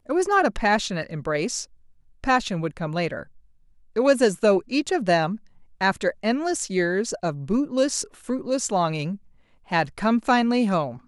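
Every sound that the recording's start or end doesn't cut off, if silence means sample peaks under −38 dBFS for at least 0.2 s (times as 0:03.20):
0:02.24–0:03.23
0:03.96–0:05.37
0:05.81–0:09.16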